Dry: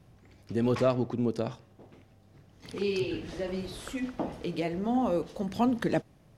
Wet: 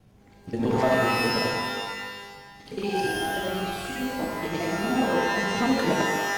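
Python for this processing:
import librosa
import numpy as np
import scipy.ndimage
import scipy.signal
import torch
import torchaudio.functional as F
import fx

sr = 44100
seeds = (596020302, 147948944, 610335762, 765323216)

y = fx.local_reverse(x, sr, ms=59.0)
y = fx.rev_shimmer(y, sr, seeds[0], rt60_s=1.3, semitones=12, shimmer_db=-2, drr_db=1.5)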